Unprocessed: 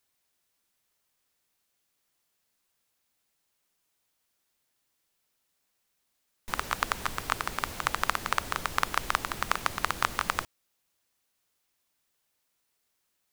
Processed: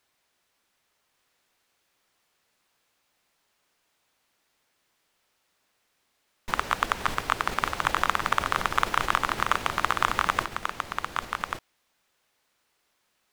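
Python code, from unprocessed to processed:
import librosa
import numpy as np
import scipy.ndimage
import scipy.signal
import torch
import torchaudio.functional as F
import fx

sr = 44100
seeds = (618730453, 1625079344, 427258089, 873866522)

p1 = fx.lowpass(x, sr, hz=2800.0, slope=6)
p2 = fx.low_shelf(p1, sr, hz=320.0, db=-6.5)
p3 = fx.level_steps(p2, sr, step_db=22)
p4 = p2 + F.gain(torch.from_numpy(p3), -2.0).numpy()
p5 = 10.0 ** (-12.0 / 20.0) * np.tanh(p4 / 10.0 ** (-12.0 / 20.0))
p6 = p5 + fx.echo_single(p5, sr, ms=1139, db=-5.5, dry=0)
y = F.gain(torch.from_numpy(p6), 6.5).numpy()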